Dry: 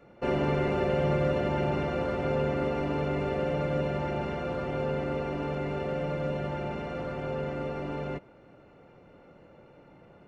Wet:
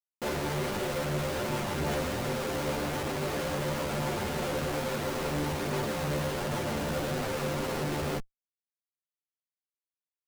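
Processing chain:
comparator with hysteresis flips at −41.5 dBFS
multi-voice chorus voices 2, 1.3 Hz, delay 11 ms, depth 3 ms
level +2 dB

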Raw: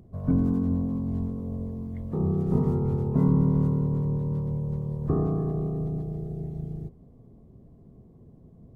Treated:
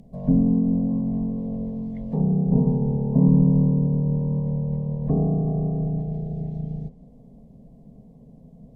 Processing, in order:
treble cut that deepens with the level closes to 800 Hz, closed at −22.5 dBFS
phaser with its sweep stopped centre 350 Hz, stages 6
level +7 dB

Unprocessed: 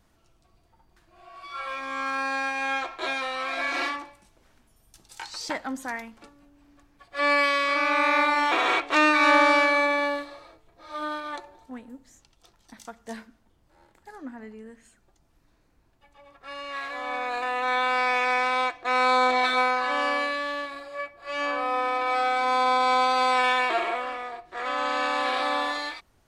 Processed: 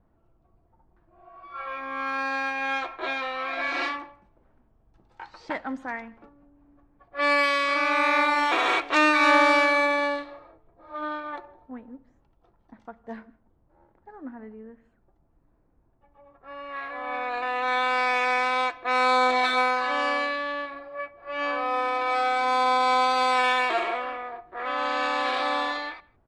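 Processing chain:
low-pass that shuts in the quiet parts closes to 950 Hz, open at −19.5 dBFS
far-end echo of a speakerphone 160 ms, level −25 dB

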